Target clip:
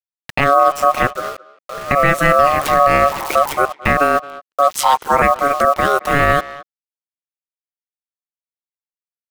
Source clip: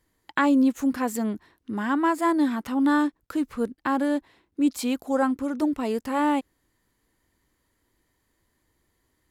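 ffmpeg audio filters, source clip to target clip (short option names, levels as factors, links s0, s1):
-filter_complex "[0:a]asettb=1/sr,asplit=3[s0][s1][s2];[s0]atrim=end=2.604[s3];[s1]atrim=start=2.6:end=3.53,asetpts=PTS-STARTPTS,afade=t=in:d=0.004:c=qsin,afade=t=out:st=0.926:d=0.004:c=qsin,aeval=exprs='val(0)+0.5*0.0266*sgn(val(0))':c=same[s4];[s2]atrim=start=3.526[s5];[s3][s4]acrossfade=d=0.004:c1=hsin:c2=qsin[s6];[s6][s5]acrossfade=d=0.004:c1=qsin:c2=hsin,aeval=exprs='val(0)*sin(2*PI*71*n/s)':c=same,asettb=1/sr,asplit=3[s7][s8][s9];[s7]atrim=end=1.074[s10];[s8]atrim=start=1.07:end=1.91,asetpts=PTS-STARTPTS,afade=t=in:d=0.004:c=qsin,afade=t=out:st=0.836:d=0.004:c=qsin,bandpass=f=420:t=q:w=4.1:csg=0[s11];[s9]atrim=start=1.906[s12];[s10][s11]acrossfade=d=0.004:c1=hsin:c2=qsin[s13];[s13][s12]acrossfade=d=0.004:c1=qsin:c2=hsin,asettb=1/sr,asplit=3[s14][s15][s16];[s14]atrim=end=4.704[s17];[s15]atrim=start=4.7:end=5.22,asetpts=PTS-STARTPTS,afade=t=in:d=0.004:c=qsin,afade=t=out:st=0.516:d=0.004:c=qsin,afreqshift=-190[s18];[s16]atrim=start=5.216[s19];[s17][s18]acrossfade=d=0.004:c1=hsin:c2=qsin[s20];[s20][s19]acrossfade=d=0.004:c1=qsin:c2=hsin,acrusher=bits=7:mix=0:aa=0.000001,aeval=exprs='val(0)*sin(2*PI*920*n/s)':c=same,asplit=2[s21][s22];[s22]adelay=220,highpass=300,lowpass=3400,asoftclip=type=hard:threshold=0.0596,volume=0.112[s23];[s21][s23]amix=inputs=2:normalize=0,alimiter=level_in=8.91:limit=0.891:release=50:level=0:latency=1,volume=0.891"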